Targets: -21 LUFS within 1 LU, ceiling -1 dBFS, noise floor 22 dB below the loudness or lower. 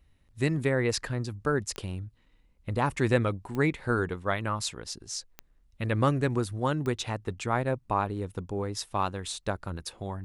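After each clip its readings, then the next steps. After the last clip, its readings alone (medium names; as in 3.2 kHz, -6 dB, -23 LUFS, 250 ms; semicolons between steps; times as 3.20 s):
clicks found 4; loudness -30.0 LUFS; peak level -10.5 dBFS; loudness target -21.0 LUFS
-> de-click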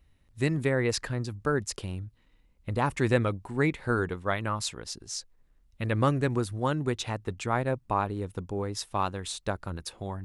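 clicks found 0; loudness -30.0 LUFS; peak level -10.5 dBFS; loudness target -21.0 LUFS
-> trim +9 dB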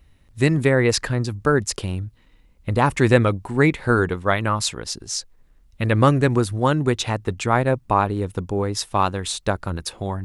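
loudness -21.0 LUFS; peak level -1.5 dBFS; noise floor -55 dBFS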